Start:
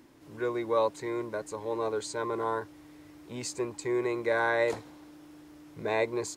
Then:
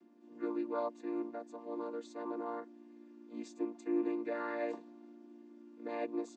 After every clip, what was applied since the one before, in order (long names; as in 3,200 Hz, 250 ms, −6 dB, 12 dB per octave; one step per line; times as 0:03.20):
channel vocoder with a chord as carrier major triad, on A#3
level −6.5 dB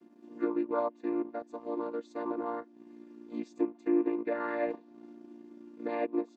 transient designer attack +3 dB, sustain −8 dB
treble cut that deepens with the level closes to 2,700 Hz, closed at −33.5 dBFS
level +5 dB